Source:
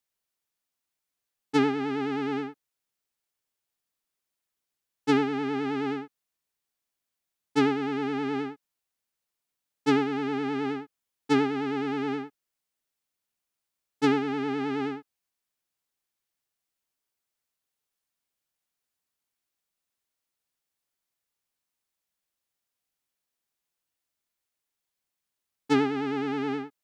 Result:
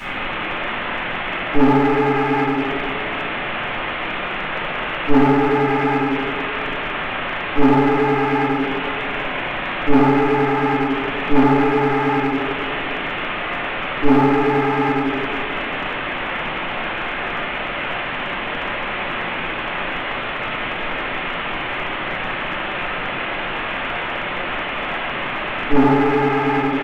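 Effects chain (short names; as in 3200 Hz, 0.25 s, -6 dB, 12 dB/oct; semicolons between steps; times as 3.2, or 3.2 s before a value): delta modulation 16 kbps, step -33.5 dBFS; speakerphone echo 0.3 s, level -30 dB; reverb RT60 1.8 s, pre-delay 3 ms, DRR -16 dB; in parallel at -4 dB: overloaded stage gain 15 dB; on the sum: bell 75 Hz -11.5 dB 1.6 oct; gain -4 dB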